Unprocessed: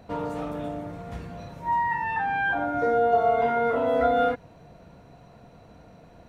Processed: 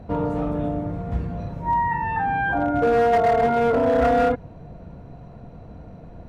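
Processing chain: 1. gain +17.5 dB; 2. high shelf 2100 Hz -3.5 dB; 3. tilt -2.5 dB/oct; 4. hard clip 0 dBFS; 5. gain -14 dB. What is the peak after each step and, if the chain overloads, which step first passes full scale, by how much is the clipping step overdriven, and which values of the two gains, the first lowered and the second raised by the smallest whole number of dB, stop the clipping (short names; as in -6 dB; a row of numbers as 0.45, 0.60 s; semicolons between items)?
+6.5, +6.0, +8.5, 0.0, -14.0 dBFS; step 1, 8.5 dB; step 1 +8.5 dB, step 5 -5 dB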